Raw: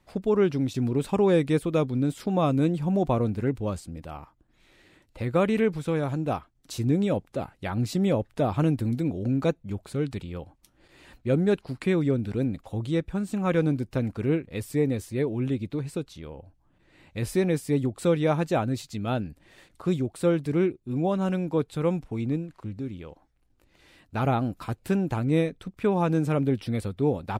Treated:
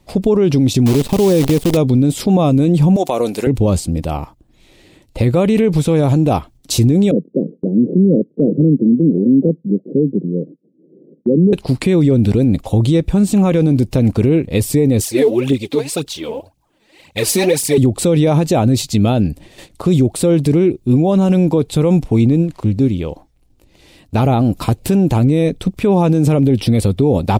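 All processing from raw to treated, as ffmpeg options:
ffmpeg -i in.wav -filter_complex "[0:a]asettb=1/sr,asplit=3[link_01][link_02][link_03];[link_01]atrim=end=0.864[link_04];[link_02]atrim=start=0.86:end=1.77,asetpts=PTS-STARTPTS,afade=type=in:duration=0.004:curve=qsin,afade=type=out:start_time=0.906:duration=0.004:curve=qsin,aemphasis=mode=reproduction:type=cd,acrusher=bits=6:dc=4:mix=0:aa=0.000001[link_05];[link_03]atrim=start=1.766[link_06];[link_04][link_05]acrossfade=duration=0.004:curve1=hsin:curve2=qsin[link_07];[link_07][link_06]acrossfade=duration=0.004:curve1=qsin:curve2=hsin,asettb=1/sr,asplit=3[link_08][link_09][link_10];[link_08]atrim=end=2.964[link_11];[link_09]atrim=start=2.96:end=3.47,asetpts=PTS-STARTPTS,afade=type=in:duration=0.004:curve=qsin,afade=type=out:start_time=0.506:duration=0.004:curve=qsin,highpass=480,highshelf=frequency=3900:gain=10,acompressor=threshold=-30dB:ratio=3:attack=3.2:release=140:knee=1:detection=peak[link_12];[link_10]atrim=start=3.466[link_13];[link_11][link_12]acrossfade=duration=0.004:curve1=hsin:curve2=qsin[link_14];[link_14][link_13]acrossfade=duration=0.004:curve1=qsin:curve2=hsin,asettb=1/sr,asplit=3[link_15][link_16][link_17];[link_15]atrim=end=7.114[link_18];[link_16]atrim=start=7.11:end=11.53,asetpts=PTS-STARTPTS,afade=type=in:duration=0.004:curve=qsin,afade=type=out:start_time=4.416:duration=0.004:curve=qsin,acrusher=samples=26:mix=1:aa=0.000001:lfo=1:lforange=26:lforate=3,asuperpass=centerf=280:order=12:qfactor=0.8[link_19];[link_17]atrim=start=11.526[link_20];[link_18][link_19]acrossfade=duration=0.004:curve1=hsin:curve2=qsin[link_21];[link_21][link_20]acrossfade=duration=0.004:curve1=qsin:curve2=hsin,asettb=1/sr,asplit=3[link_22][link_23][link_24];[link_22]atrim=end=15.004[link_25];[link_23]atrim=start=15:end=17.78,asetpts=PTS-STARTPTS,afade=type=in:duration=0.004:curve=qsin,afade=type=out:start_time=2.776:duration=0.004:curve=qsin,highpass=frequency=630:poles=1,aphaser=in_gain=1:out_gain=1:delay=4.8:decay=0.73:speed=1.9:type=triangular[link_26];[link_24]atrim=start=17.776[link_27];[link_25][link_26]acrossfade=duration=0.004:curve1=hsin:curve2=qsin[link_28];[link_28][link_27]acrossfade=duration=0.004:curve1=qsin:curve2=hsin,agate=range=-7dB:threshold=-53dB:ratio=16:detection=peak,equalizer=frequency=1500:width=1.2:gain=-11,alimiter=level_in=24dB:limit=-1dB:release=50:level=0:latency=1,volume=-4dB" out.wav

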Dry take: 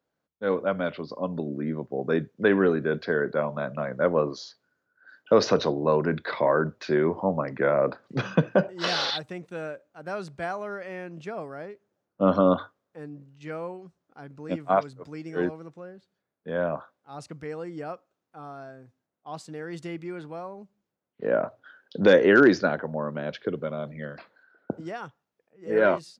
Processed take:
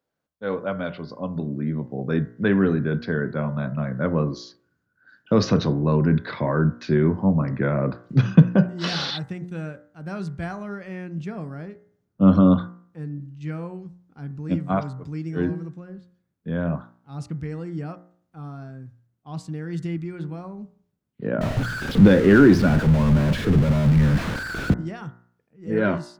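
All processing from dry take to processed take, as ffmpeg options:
ffmpeg -i in.wav -filter_complex "[0:a]asettb=1/sr,asplit=3[link_01][link_02][link_03];[link_01]atrim=end=21.414[link_04];[link_02]atrim=start=21.41:end=24.74,asetpts=PTS-STARTPTS,afade=type=in:duration=0.004:curve=qsin,afade=type=out:start_time=3.326:duration=0.004:curve=qsin,aeval=exprs='val(0)+0.5*0.0794*sgn(val(0))':channel_layout=same,lowpass=frequency=2400:poles=1[link_05];[link_03]atrim=start=24.736[link_06];[link_04][link_05]acrossfade=duration=0.004:curve1=hsin:curve2=qsin[link_07];[link_07][link_06]acrossfade=duration=0.004:curve1=qsin:curve2=hsin,asubboost=boost=8:cutoff=190,bandreject=frequency=59.37:width_type=h:width=4,bandreject=frequency=118.74:width_type=h:width=4,bandreject=frequency=178.11:width_type=h:width=4,bandreject=frequency=237.48:width_type=h:width=4,bandreject=frequency=296.85:width_type=h:width=4,bandreject=frequency=356.22:width_type=h:width=4,bandreject=frequency=415.59:width_type=h:width=4,bandreject=frequency=474.96:width_type=h:width=4,bandreject=frequency=534.33:width_type=h:width=4,bandreject=frequency=593.7:width_type=h:width=4,bandreject=frequency=653.07:width_type=h:width=4,bandreject=frequency=712.44:width_type=h:width=4,bandreject=frequency=771.81:width_type=h:width=4,bandreject=frequency=831.18:width_type=h:width=4,bandreject=frequency=890.55:width_type=h:width=4,bandreject=frequency=949.92:width_type=h:width=4,bandreject=frequency=1009.29:width_type=h:width=4,bandreject=frequency=1068.66:width_type=h:width=4,bandreject=frequency=1128.03:width_type=h:width=4,bandreject=frequency=1187.4:width_type=h:width=4,bandreject=frequency=1246.77:width_type=h:width=4,bandreject=frequency=1306.14:width_type=h:width=4,bandreject=frequency=1365.51:width_type=h:width=4,bandreject=frequency=1424.88:width_type=h:width=4,bandreject=frequency=1484.25:width_type=h:width=4,bandreject=frequency=1543.62:width_type=h:width=4,bandreject=frequency=1602.99:width_type=h:width=4,bandreject=frequency=1662.36:width_type=h:width=4,bandreject=frequency=1721.73:width_type=h:width=4,bandreject=frequency=1781.1:width_type=h:width=4,bandreject=frequency=1840.47:width_type=h:width=4,bandreject=frequency=1899.84:width_type=h:width=4,bandreject=frequency=1959.21:width_type=h:width=4,bandreject=frequency=2018.58:width_type=h:width=4,bandreject=frequency=2077.95:width_type=h:width=4" out.wav

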